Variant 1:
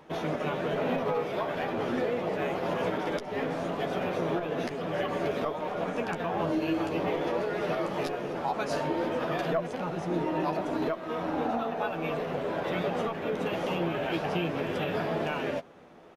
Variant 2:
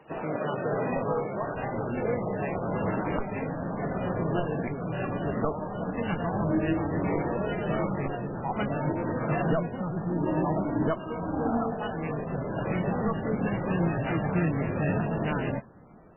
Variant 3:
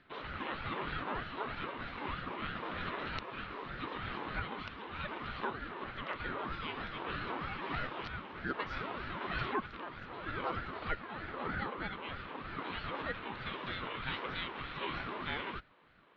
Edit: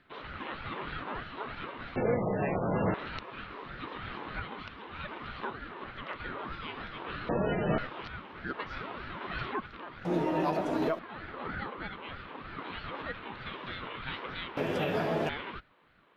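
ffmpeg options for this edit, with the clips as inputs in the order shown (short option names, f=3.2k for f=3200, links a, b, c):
-filter_complex "[1:a]asplit=2[a][b];[0:a]asplit=2[c][d];[2:a]asplit=5[e][f][g][h][i];[e]atrim=end=1.962[j];[a]atrim=start=1.958:end=2.942[k];[f]atrim=start=2.938:end=7.292[l];[b]atrim=start=7.288:end=7.782[m];[g]atrim=start=7.778:end=10.052[n];[c]atrim=start=10.048:end=10.992[o];[h]atrim=start=10.988:end=14.572[p];[d]atrim=start=14.568:end=15.292[q];[i]atrim=start=15.288[r];[j][k]acrossfade=d=0.004:c1=hsin:c2=hsin[s];[s][l]acrossfade=d=0.004:c1=hsin:c2=hsin[t];[t][m]acrossfade=d=0.004:c1=hsin:c2=hsin[u];[u][n]acrossfade=d=0.004:c1=hsin:c2=hsin[v];[v][o]acrossfade=d=0.004:c1=hsin:c2=hsin[w];[w][p]acrossfade=d=0.004:c1=hsin:c2=hsin[x];[x][q]acrossfade=d=0.004:c1=hsin:c2=hsin[y];[y][r]acrossfade=d=0.004:c1=hsin:c2=hsin"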